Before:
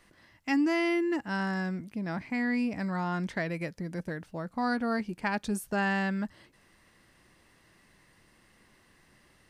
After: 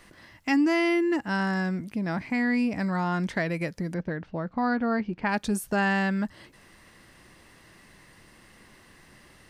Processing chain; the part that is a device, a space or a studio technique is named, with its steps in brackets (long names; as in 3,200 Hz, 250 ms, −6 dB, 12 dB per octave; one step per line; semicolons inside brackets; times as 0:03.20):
0:03.94–0:05.29: high-frequency loss of the air 220 metres
parallel compression (in parallel at −0.5 dB: downward compressor, threshold −41 dBFS, peak gain reduction 16.5 dB)
on the sum: level +2.5 dB